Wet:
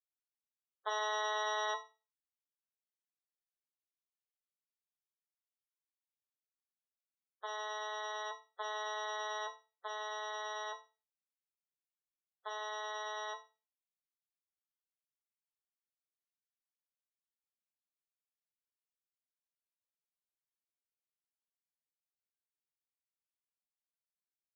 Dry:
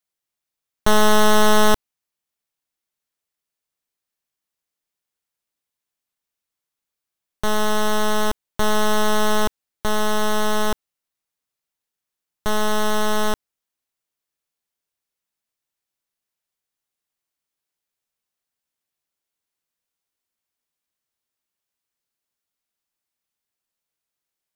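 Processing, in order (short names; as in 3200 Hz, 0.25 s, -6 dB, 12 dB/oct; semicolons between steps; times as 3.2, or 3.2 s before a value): inverse Chebyshev high-pass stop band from 250 Hz, stop band 40 dB; loudest bins only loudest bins 32; resonator bank F3 major, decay 0.31 s; gain +3.5 dB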